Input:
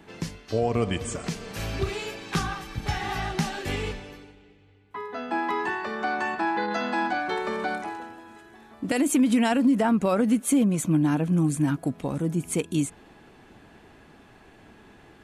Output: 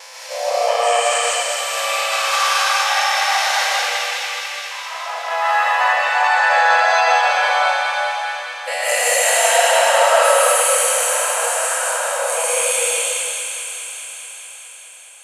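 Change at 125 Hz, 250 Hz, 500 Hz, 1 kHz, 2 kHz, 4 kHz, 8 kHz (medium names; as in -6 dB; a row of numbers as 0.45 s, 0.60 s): under -40 dB, under -40 dB, +11.0 dB, +14.0 dB, +15.5 dB, +18.0 dB, +18.5 dB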